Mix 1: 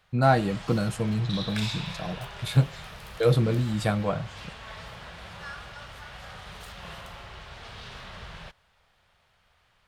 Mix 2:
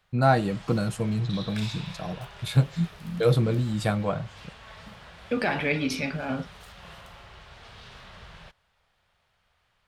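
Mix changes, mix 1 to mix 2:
second voice: unmuted; background -4.5 dB

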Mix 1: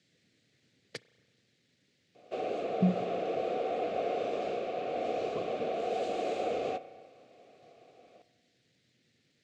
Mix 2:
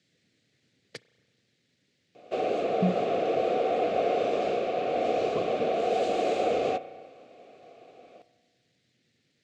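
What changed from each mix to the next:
background +6.5 dB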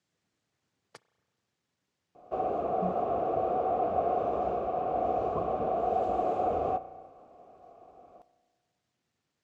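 background: add tilt EQ -4 dB/octave; master: add graphic EQ 125/250/500/1000/2000/4000/8000 Hz -10/-9/-10/+11/-12/-11/-4 dB

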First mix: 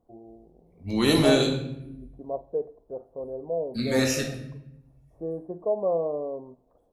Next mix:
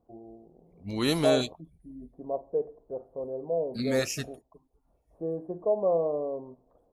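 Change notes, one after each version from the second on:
reverb: off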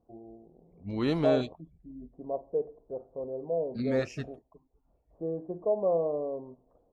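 master: add tape spacing loss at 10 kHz 28 dB

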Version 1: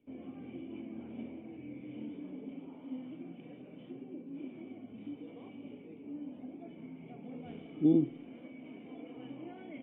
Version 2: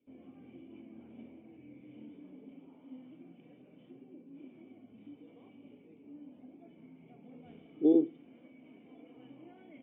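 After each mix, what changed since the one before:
speech: add resonant high-pass 430 Hz, resonance Q 4.1; background -7.5 dB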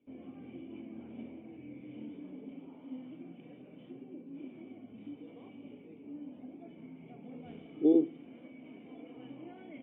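background +5.5 dB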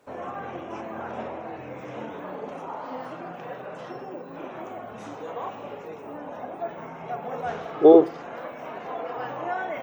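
master: remove cascade formant filter i

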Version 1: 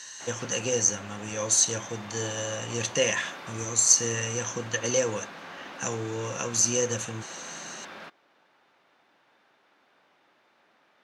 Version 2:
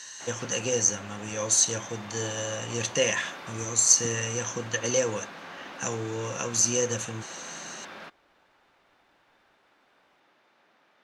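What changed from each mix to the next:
second voice: unmuted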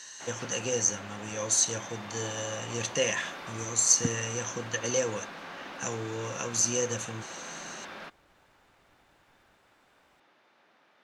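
first voice -3.0 dB; second voice +10.0 dB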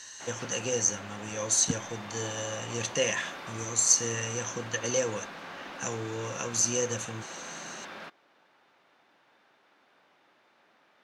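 second voice: entry -2.35 s

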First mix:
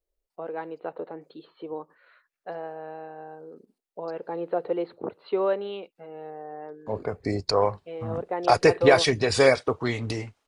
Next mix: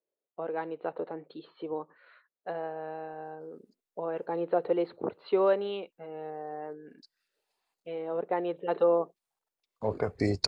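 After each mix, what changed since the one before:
second voice: entry +2.95 s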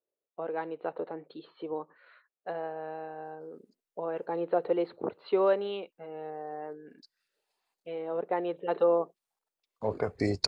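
master: add bass shelf 180 Hz -3 dB

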